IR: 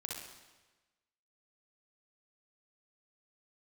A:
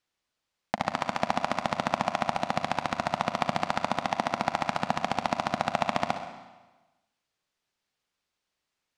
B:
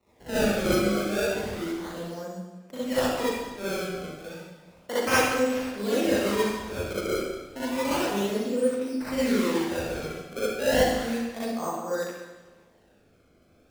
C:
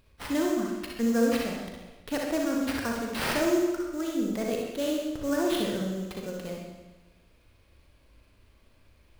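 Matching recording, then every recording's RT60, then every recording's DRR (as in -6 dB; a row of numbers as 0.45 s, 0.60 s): C; 1.2 s, 1.2 s, 1.2 s; 6.0 dB, -11.5 dB, -1.5 dB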